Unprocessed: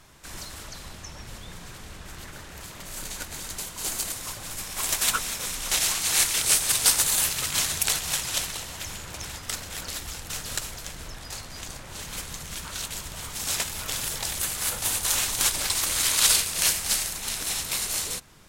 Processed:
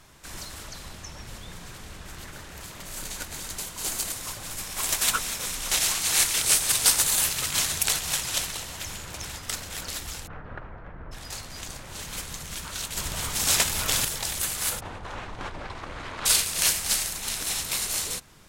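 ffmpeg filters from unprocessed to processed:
ffmpeg -i in.wav -filter_complex "[0:a]asplit=3[link_01][link_02][link_03];[link_01]afade=type=out:start_time=10.26:duration=0.02[link_04];[link_02]lowpass=frequency=1600:width=0.5412,lowpass=frequency=1600:width=1.3066,afade=type=in:start_time=10.26:duration=0.02,afade=type=out:start_time=11.11:duration=0.02[link_05];[link_03]afade=type=in:start_time=11.11:duration=0.02[link_06];[link_04][link_05][link_06]amix=inputs=3:normalize=0,asettb=1/sr,asplit=3[link_07][link_08][link_09];[link_07]atrim=end=12.974[link_10];[link_08]atrim=start=12.97:end=14.05,asetpts=PTS-STARTPTS,afade=type=in:duration=0.004:curve=qsin,afade=type=out:start_time=1.076:duration=0.004:curve=qsin,acontrast=49[link_11];[link_09]atrim=start=14.046[link_12];[link_10][link_11]acrossfade=duration=0.004:curve1=hsin:curve2=qsin[link_13];[link_13][link_12]acrossfade=duration=0.004:curve1=qsin:curve2=hsin,asplit=3[link_14][link_15][link_16];[link_14]afade=type=out:start_time=14.79:duration=0.02[link_17];[link_15]lowpass=1300,afade=type=in:start_time=14.79:duration=0.02,afade=type=out:start_time=16.25:duration=0.02[link_18];[link_16]afade=type=in:start_time=16.25:duration=0.02[link_19];[link_17][link_18][link_19]amix=inputs=3:normalize=0" out.wav

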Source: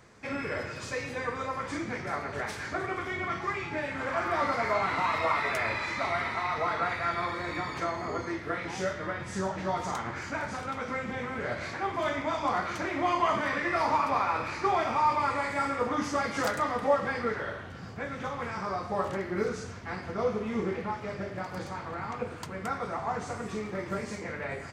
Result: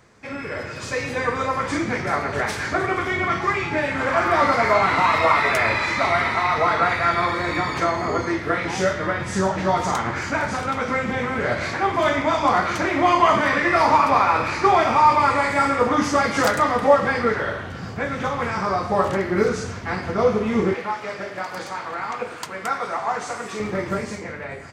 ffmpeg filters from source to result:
ffmpeg -i in.wav -filter_complex "[0:a]asettb=1/sr,asplit=3[link_01][link_02][link_03];[link_01]atrim=end=20.744[link_04];[link_02]atrim=start=20.74:end=23.6,asetpts=PTS-STARTPTS,afade=type=in:duration=0.004:curve=qsin,afade=type=out:start_time=2.856:duration=0.004:curve=qsin,highpass=frequency=720:poles=1[link_05];[link_03]atrim=start=23.596[link_06];[link_04][link_05]acrossfade=duration=0.004:curve1=hsin:curve2=qsin[link_07];[link_07][link_06]acrossfade=duration=0.004:curve1=qsin:curve2=hsin,dynaudnorm=framelen=100:gausssize=17:maxgain=8.5dB,volume=2dB" out.wav

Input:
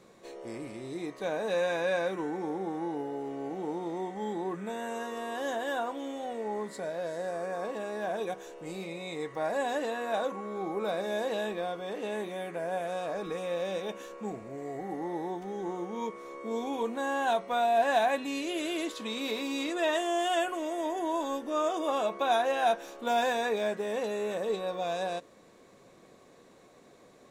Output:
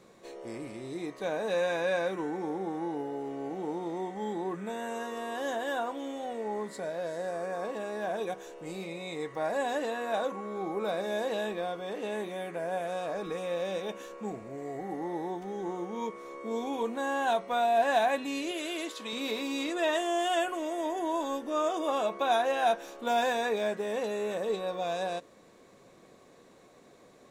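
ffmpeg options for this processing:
ffmpeg -i in.wav -filter_complex "[0:a]asettb=1/sr,asplit=3[link_01][link_02][link_03];[link_01]atrim=end=18.514[link_04];[link_02]atrim=start=18.51:end=19.13,asetpts=PTS-STARTPTS,afade=type=in:duration=0.004:curve=qsin,afade=type=out:start_time=0.616:duration=0.004:curve=qsin,lowshelf=frequency=280:gain=-9.5[link_05];[link_03]atrim=start=19.126[link_06];[link_04][link_05]acrossfade=duration=0.004:curve1=hsin:curve2=qsin[link_07];[link_07][link_06]acrossfade=duration=0.004:curve1=qsin:curve2=hsin" out.wav

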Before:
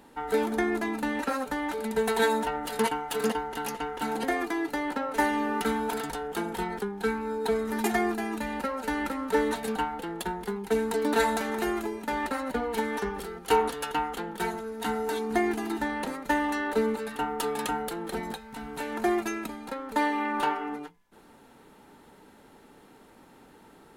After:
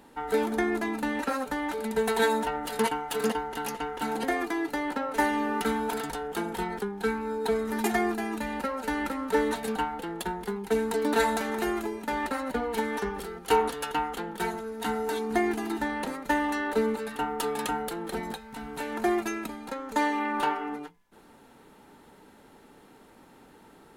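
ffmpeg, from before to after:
ffmpeg -i in.wav -filter_complex "[0:a]asettb=1/sr,asplit=3[link_01][link_02][link_03];[link_01]atrim=end=19.714[link_04];[link_02]atrim=start=19.71:end=20.19,asetpts=PTS-STARTPTS,afade=type=in:duration=0.004:curve=qsin,afade=type=out:start_time=0.476:duration=0.004:curve=qsin,equalizer=frequency=6600:width_type=o:width=0.43:gain=7.5[link_05];[link_03]atrim=start=20.186[link_06];[link_04][link_05]acrossfade=duration=0.004:curve1=hsin:curve2=qsin[link_07];[link_07][link_06]acrossfade=duration=0.004:curve1=qsin:curve2=hsin" out.wav

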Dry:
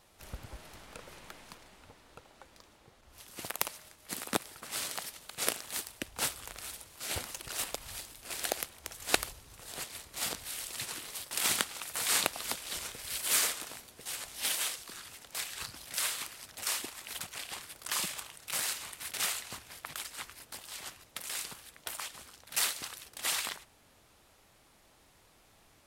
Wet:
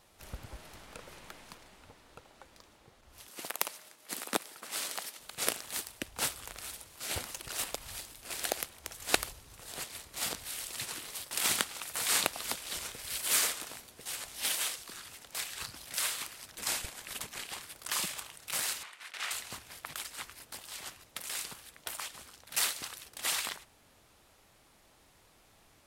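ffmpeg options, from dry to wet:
ffmpeg -i in.wav -filter_complex "[0:a]asettb=1/sr,asplit=3[link_01][link_02][link_03];[link_01]atrim=end=3.284[link_04];[link_02]atrim=start=3.28:end=5.2,asetpts=PTS-STARTPTS,afade=type=in:duration=0.004:curve=qsin,afade=type=out:start_time=1.916:duration=0.004:curve=qsin,highpass=230[link_05];[link_03]atrim=start=5.196[link_06];[link_04][link_05]acrossfade=duration=0.004:curve1=hsin:curve2=qsin[link_07];[link_07][link_06]acrossfade=duration=0.004:curve1=qsin:curve2=hsin,asettb=1/sr,asplit=3[link_08][link_09][link_10];[link_08]atrim=end=16.564[link_11];[link_09]atrim=start=16.56:end=17.46,asetpts=PTS-STARTPTS,afade=type=in:duration=0.004:curve=qsin,afade=type=out:start_time=0.896:duration=0.004:curve=qsin,afreqshift=-300[link_12];[link_10]atrim=start=17.456[link_13];[link_11][link_12]acrossfade=duration=0.004:curve1=hsin:curve2=qsin[link_14];[link_14][link_13]acrossfade=duration=0.004:curve1=qsin:curve2=hsin,asettb=1/sr,asplit=3[link_15][link_16][link_17];[link_15]atrim=end=18.834[link_18];[link_16]atrim=start=18.83:end=19.31,asetpts=PTS-STARTPTS,afade=type=in:duration=0.004:curve=qsin,afade=type=out:start_time=0.476:duration=0.004:curve=qsin,bandpass=frequency=1700:width_type=q:width=0.78[link_19];[link_17]atrim=start=19.306[link_20];[link_18][link_19]acrossfade=duration=0.004:curve1=hsin:curve2=qsin[link_21];[link_21][link_20]acrossfade=duration=0.004:curve1=qsin:curve2=hsin" out.wav

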